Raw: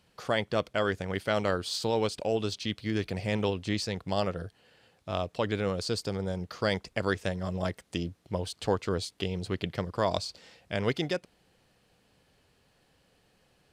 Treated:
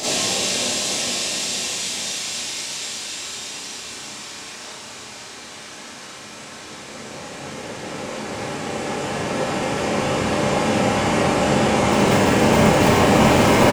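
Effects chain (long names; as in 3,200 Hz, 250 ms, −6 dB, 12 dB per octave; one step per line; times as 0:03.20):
turntable start at the beginning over 2.35 s
hum removal 145.6 Hz, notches 32
dynamic equaliser 780 Hz, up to −3 dB, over −46 dBFS, Q 2
cochlear-implant simulation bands 4
extreme stretch with random phases 28×, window 0.50 s, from 0:10.31
in parallel at −10 dB: bit reduction 4 bits
on the sum: pitch-shifted copies added −7 semitones −6 dB, +3 semitones −15 dB, +4 semitones −18 dB
four-comb reverb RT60 0.55 s, combs from 29 ms, DRR −9.5 dB
level +6.5 dB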